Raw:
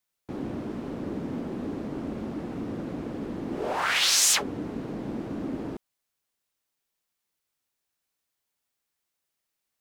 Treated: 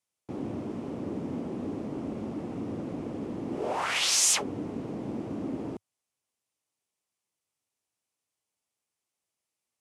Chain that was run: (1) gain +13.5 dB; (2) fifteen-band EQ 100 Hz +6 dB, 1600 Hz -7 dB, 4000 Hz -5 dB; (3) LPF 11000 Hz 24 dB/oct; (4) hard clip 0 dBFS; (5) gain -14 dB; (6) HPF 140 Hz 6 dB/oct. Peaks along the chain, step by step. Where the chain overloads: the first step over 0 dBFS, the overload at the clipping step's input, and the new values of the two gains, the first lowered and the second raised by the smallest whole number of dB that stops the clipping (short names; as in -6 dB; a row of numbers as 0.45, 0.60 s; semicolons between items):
+4.5, +3.0, +3.0, 0.0, -14.0, -14.0 dBFS; step 1, 3.0 dB; step 1 +10.5 dB, step 5 -11 dB